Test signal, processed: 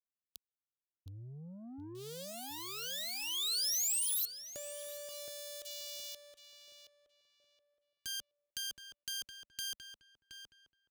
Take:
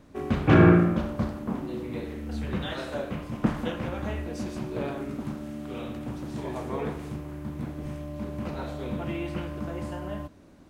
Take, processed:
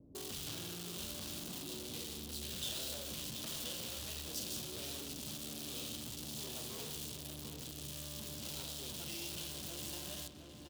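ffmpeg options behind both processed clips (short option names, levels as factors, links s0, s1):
-filter_complex "[0:a]acrossover=split=1100|6600[s0][s1][s2];[s0]acompressor=threshold=0.02:ratio=4[s3];[s1]acompressor=threshold=0.00794:ratio=4[s4];[s2]acompressor=threshold=0.00447:ratio=4[s5];[s3][s4][s5]amix=inputs=3:normalize=0,acrossover=split=540[s6][s7];[s6]crystalizer=i=5:c=0[s8];[s7]acrusher=bits=5:dc=4:mix=0:aa=0.000001[s9];[s8][s9]amix=inputs=2:normalize=0,adynamicequalizer=threshold=0.001:dfrequency=3000:dqfactor=1.2:tfrequency=3000:tqfactor=1.2:attack=5:release=100:ratio=0.375:range=3.5:mode=boostabove:tftype=bell,asoftclip=type=tanh:threshold=0.015,equalizer=f=210:w=5.6:g=-5,acompressor=threshold=0.00794:ratio=6,aexciter=amount=5:drive=7.6:freq=3100,highpass=50,asplit=2[s10][s11];[s11]adelay=721,lowpass=f=2400:p=1,volume=0.501,asplit=2[s12][s13];[s13]adelay=721,lowpass=f=2400:p=1,volume=0.31,asplit=2[s14][s15];[s15]adelay=721,lowpass=f=2400:p=1,volume=0.31,asplit=2[s16][s17];[s17]adelay=721,lowpass=f=2400:p=1,volume=0.31[s18];[s10][s12][s14][s16][s18]amix=inputs=5:normalize=0,volume=0.596"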